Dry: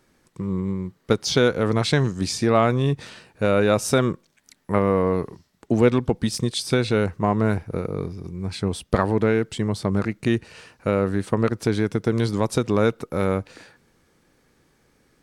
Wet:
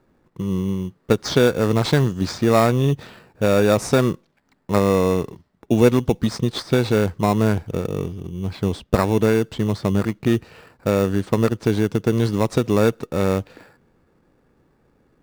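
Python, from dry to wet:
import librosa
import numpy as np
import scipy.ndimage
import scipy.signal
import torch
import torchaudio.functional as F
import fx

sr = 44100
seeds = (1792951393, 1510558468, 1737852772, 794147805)

p1 = fx.env_lowpass(x, sr, base_hz=1600.0, full_db=-15.5)
p2 = fx.sample_hold(p1, sr, seeds[0], rate_hz=3100.0, jitter_pct=0)
p3 = p1 + (p2 * librosa.db_to_amplitude(-5.0))
y = p3 * librosa.db_to_amplitude(-1.0)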